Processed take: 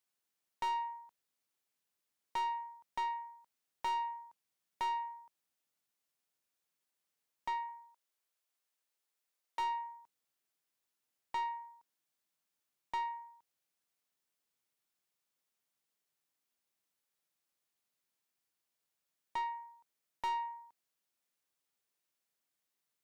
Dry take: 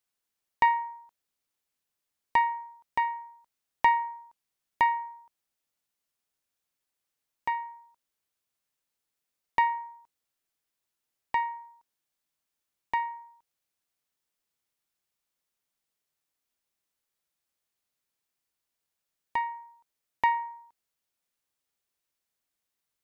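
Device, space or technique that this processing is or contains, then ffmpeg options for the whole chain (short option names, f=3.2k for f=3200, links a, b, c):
saturation between pre-emphasis and de-emphasis: -filter_complex "[0:a]highpass=110,highshelf=f=3.8k:g=11,asoftclip=type=tanh:threshold=-29.5dB,highshelf=f=3.8k:g=-11,asettb=1/sr,asplit=3[a][b][c];[a]atrim=end=7.694[d];[b]atrim=start=7.69:end=9.6,asetpts=PTS-STARTPTS,afade=t=in:d=0.004:c=qsin,afade=t=out:st=1.906:d=0.004:c=qsin,highpass=390[e];[c]atrim=start=9.596[f];[d][e]acrossfade=d=0.004:c1=hsin:c2=qsin[g];[g][f]acrossfade=d=0.004:c1=qsin:c2=hsin,volume=-2dB"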